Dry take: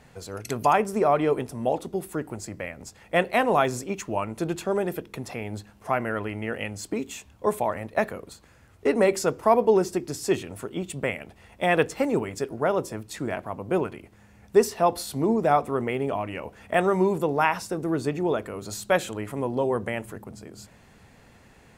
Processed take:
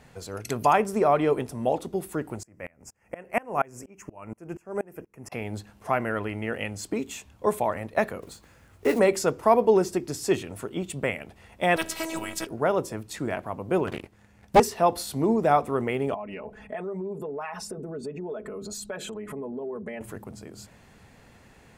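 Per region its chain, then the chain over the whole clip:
0:02.43–0:05.32: Butterworth band-reject 3,800 Hz, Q 1.5 + tremolo with a ramp in dB swelling 4.2 Hz, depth 29 dB
0:08.22–0:09.00: one scale factor per block 5 bits + double-tracking delay 20 ms −9 dB
0:11.76–0:12.47: phases set to zero 325 Hz + every bin compressed towards the loudest bin 2 to 1
0:13.87–0:14.60: leveller curve on the samples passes 2 + highs frequency-modulated by the lows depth 0.79 ms
0:16.14–0:20.01: spectral envelope exaggerated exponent 1.5 + comb filter 4.7 ms, depth 84% + downward compressor 4 to 1, threshold −33 dBFS
whole clip: no processing

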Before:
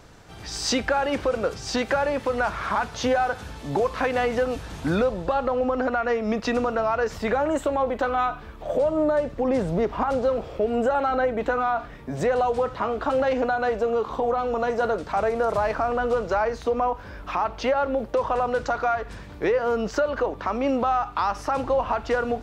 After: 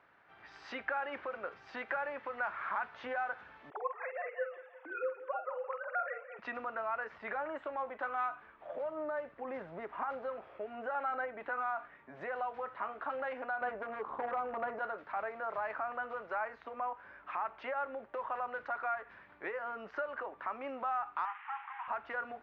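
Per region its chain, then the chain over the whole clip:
0:03.70–0:06.39: three sine waves on the formant tracks + double-tracking delay 48 ms −8.5 dB + repeating echo 173 ms, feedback 55%, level −15 dB
0:13.61–0:14.79: tilt shelving filter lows +7.5 dB, about 1,500 Hz + hard clipping −13.5 dBFS
0:21.25–0:21.88: linear delta modulator 16 kbit/s, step −31.5 dBFS + Butterworth high-pass 790 Hz 96 dB per octave
whole clip: low-pass filter 1,900 Hz 24 dB per octave; first difference; notch filter 470 Hz, Q 12; level +5.5 dB

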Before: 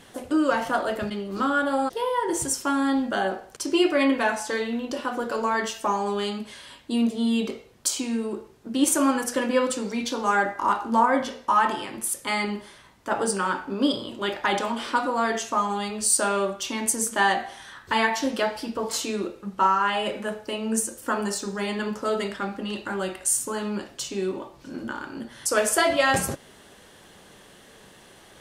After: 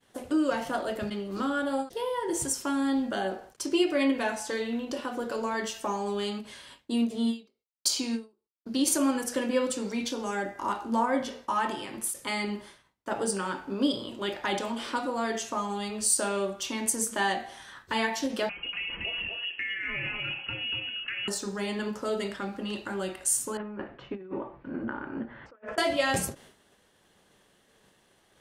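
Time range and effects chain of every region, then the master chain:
0:07.33–0:08.98: notch filter 8,000 Hz, Q 11 + noise gate −49 dBFS, range −51 dB + parametric band 4,600 Hz +9.5 dB 0.44 octaves
0:10.10–0:10.60: parametric band 1,100 Hz −6.5 dB 1.3 octaves + notch filter 4,100 Hz, Q 9.4 + one half of a high-frequency compander encoder only
0:18.49–0:21.28: voice inversion scrambler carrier 3,100 Hz + downward compressor 3 to 1, threshold −27 dBFS + single-tap delay 239 ms −3.5 dB
0:23.57–0:25.78: low-pass filter 2,100 Hz 24 dB per octave + compressor whose output falls as the input rises −32 dBFS, ratio −0.5
whole clip: downward expander −42 dBFS; dynamic equaliser 1,200 Hz, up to −6 dB, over −35 dBFS, Q 1; every ending faded ahead of time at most 230 dB per second; level −3 dB

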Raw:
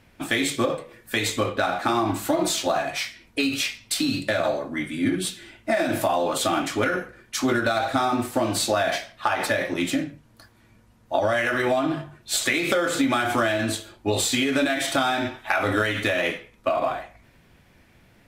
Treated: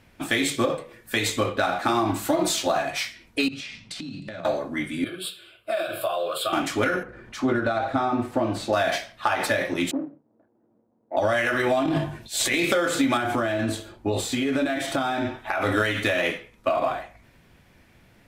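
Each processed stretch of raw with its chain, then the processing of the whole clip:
0:03.48–0:04.45: low-pass filter 5,600 Hz + parametric band 170 Hz +14 dB 0.82 octaves + downward compressor 12 to 1, threshold −32 dBFS
0:05.04–0:06.53: high-pass filter 380 Hz 6 dB per octave + phaser with its sweep stopped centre 1,300 Hz, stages 8
0:07.03–0:08.73: low-pass filter 1,300 Hz 6 dB per octave + upward compression, threshold −34 dBFS
0:09.91–0:11.17: running median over 41 samples + flat-topped band-pass 520 Hz, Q 0.72
0:11.80–0:12.66: parametric band 1,300 Hz −11.5 dB 0.25 octaves + transient designer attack −10 dB, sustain +11 dB + double-tracking delay 18 ms −13 dB
0:13.17–0:15.62: downward compressor 2 to 1, threshold −26 dBFS + tilt shelving filter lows +4 dB, about 1,500 Hz
whole clip: no processing

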